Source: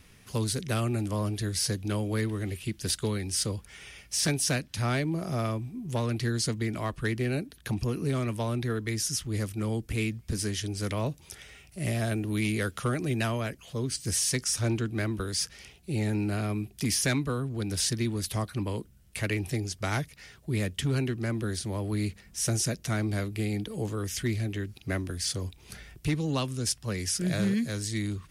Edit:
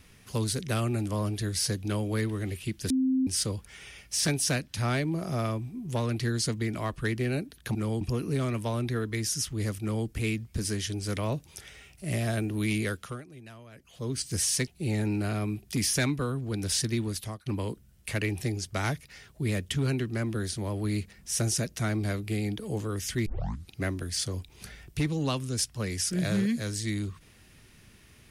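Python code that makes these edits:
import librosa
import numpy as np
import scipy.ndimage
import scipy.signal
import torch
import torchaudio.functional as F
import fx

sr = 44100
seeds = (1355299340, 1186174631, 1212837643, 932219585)

y = fx.edit(x, sr, fx.bleep(start_s=2.9, length_s=0.37, hz=261.0, db=-22.0),
    fx.duplicate(start_s=9.55, length_s=0.26, to_s=7.75),
    fx.fade_down_up(start_s=12.55, length_s=1.35, db=-19.0, fade_s=0.44),
    fx.cut(start_s=14.41, length_s=1.34),
    fx.fade_out_to(start_s=18.14, length_s=0.4, floor_db=-21.0),
    fx.tape_start(start_s=24.34, length_s=0.44), tone=tone)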